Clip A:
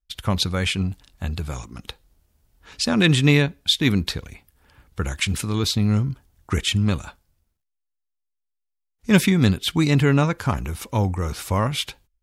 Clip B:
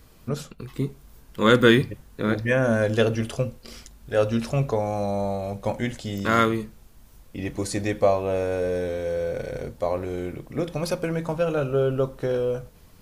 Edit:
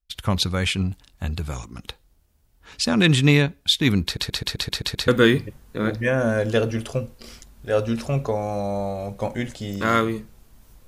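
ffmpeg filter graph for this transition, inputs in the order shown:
-filter_complex "[0:a]apad=whole_dur=10.87,atrim=end=10.87,asplit=8[a][b][c][d][e][f][g][h];[a]atrim=end=4.172[i];[b]atrim=start=4.038:end=4.172[j];[c]atrim=start=4.038:end=4.172[k];[d]atrim=start=4.038:end=4.172[l];[e]atrim=start=4.038:end=4.172[m];[f]atrim=start=4.038:end=4.172[n];[g]atrim=start=4.038:end=4.172[o];[h]atrim=start=4.038:end=4.172[p];[1:a]atrim=start=1.518:end=7.31[q];[i][j]acrossfade=d=0.004:c1=hsin:c2=hsin[r];[r][k]acrossfade=d=0.004:c1=hsin:c2=hsin[s];[s][l]acrossfade=d=0.004:c1=hsin:c2=hsin[t];[t][m]acrossfade=d=0.004:c1=hsin:c2=hsin[u];[u][n]acrossfade=d=0.004:c1=hsin:c2=hsin[v];[v][o]acrossfade=d=0.004:c1=hsin:c2=hsin[w];[w][p]acrossfade=d=0.004:c1=hsin:c2=hsin[x];[x][q]acrossfade=d=0.004:c1=hsin:c2=hsin"

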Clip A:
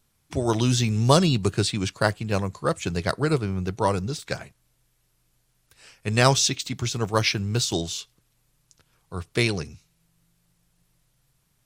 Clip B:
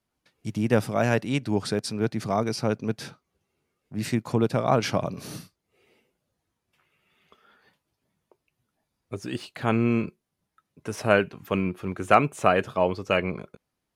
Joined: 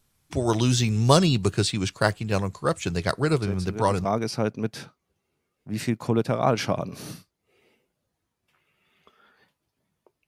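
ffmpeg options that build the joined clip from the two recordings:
-filter_complex "[1:a]asplit=2[a][b];[0:a]apad=whole_dur=10.27,atrim=end=10.27,atrim=end=4.052[c];[b]atrim=start=2.298:end=8.52[d];[a]atrim=start=1.67:end=2.3,asetpts=PTS-STARTPTS,volume=-8.5dB,afade=t=in:d=0.004:c=hsin,afade=t=out:st=0.626:d=0.004:c=hsin,adelay=3420[e];[c][d]acrossfade=d=0.004:c1=hsin:c2=hsin[f];[f][e]amix=inputs=2:normalize=0"

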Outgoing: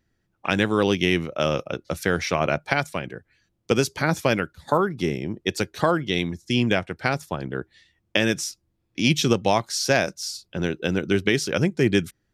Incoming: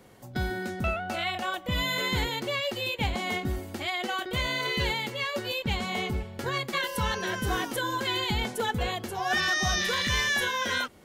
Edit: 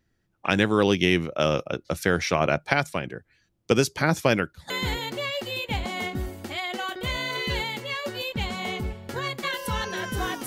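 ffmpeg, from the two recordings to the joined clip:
-filter_complex "[0:a]apad=whole_dur=10.46,atrim=end=10.46,atrim=end=4.702[a];[1:a]atrim=start=1.998:end=7.76[b];[a][b]acrossfade=d=0.004:c1=hsin:c2=hsin"

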